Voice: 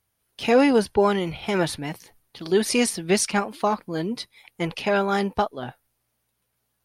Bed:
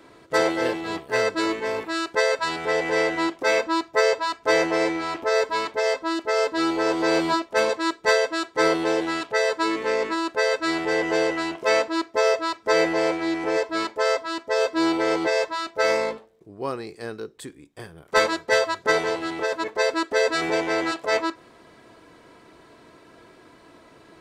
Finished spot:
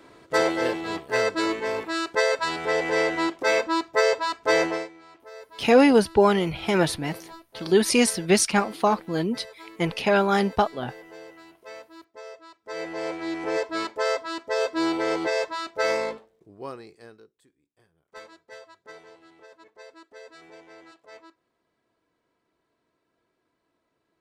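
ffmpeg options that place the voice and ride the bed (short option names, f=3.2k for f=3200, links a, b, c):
-filter_complex "[0:a]adelay=5200,volume=1.5dB[a];[1:a]volume=18dB,afade=t=out:st=4.65:d=0.23:silence=0.0891251,afade=t=in:st=12.6:d=0.94:silence=0.112202,afade=t=out:st=16.13:d=1.22:silence=0.0794328[b];[a][b]amix=inputs=2:normalize=0"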